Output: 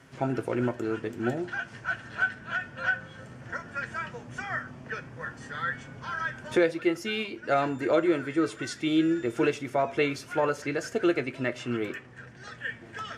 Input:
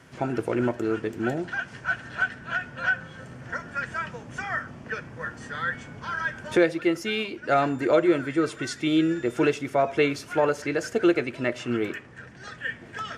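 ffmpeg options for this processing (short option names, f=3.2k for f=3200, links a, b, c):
-af "flanger=delay=7.4:depth=2:regen=70:speed=0.18:shape=sinusoidal,volume=1.5dB"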